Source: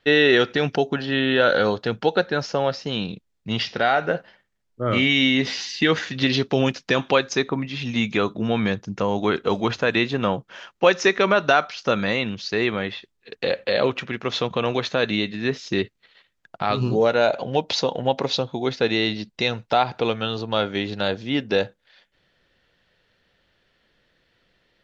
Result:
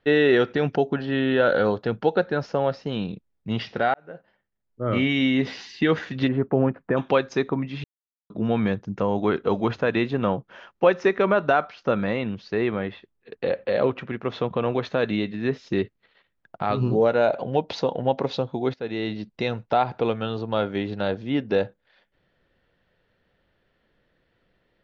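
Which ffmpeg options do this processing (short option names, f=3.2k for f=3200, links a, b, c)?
-filter_complex "[0:a]asplit=3[a][b][c];[a]afade=t=out:st=6.27:d=0.02[d];[b]lowpass=f=1.7k:w=0.5412,lowpass=f=1.7k:w=1.3066,afade=t=in:st=6.27:d=0.02,afade=t=out:st=6.96:d=0.02[e];[c]afade=t=in:st=6.96:d=0.02[f];[d][e][f]amix=inputs=3:normalize=0,asettb=1/sr,asplit=3[g][h][i];[g]atrim=end=10.844[j];[h]atrim=start=10.84:end=14.83,asetpts=PTS-STARTPTS,afade=t=in:d=0.004:c=qsin,afade=t=out:st=3.986:d=0.004:c=qsin,highshelf=f=4.7k:g=-8.5[k];[i]atrim=start=14.826[l];[j][k]acrossfade=d=0.004:c1=hsin:c2=qsin[m];[m][l]acrossfade=d=0.004:c1=qsin:c2=hsin,asplit=5[n][o][p][q][r];[n]atrim=end=3.94,asetpts=PTS-STARTPTS,afade=t=out:st=3.936:d=0.004:c=hsin[s];[o]atrim=start=3.94:end=7.84,asetpts=PTS-STARTPTS,afade=t=in:d=1.09,afade=t=out:st=3.896:d=0.004:c=hsin[t];[p]atrim=start=7.84:end=8.3,asetpts=PTS-STARTPTS,volume=0[u];[q]atrim=start=8.3:end=18.74,asetpts=PTS-STARTPTS,afade=t=in:d=0.004:c=hsin,afade=t=out:st=10.436:d=0.004:c=hsin:silence=0.177828[v];[r]atrim=start=18.74,asetpts=PTS-STARTPTS,afade=t=in:d=0.71:c=qsin:silence=0.177828[w];[s][t][u][v][w]concat=n=5:v=0:a=1,lowpass=f=1.2k:p=1"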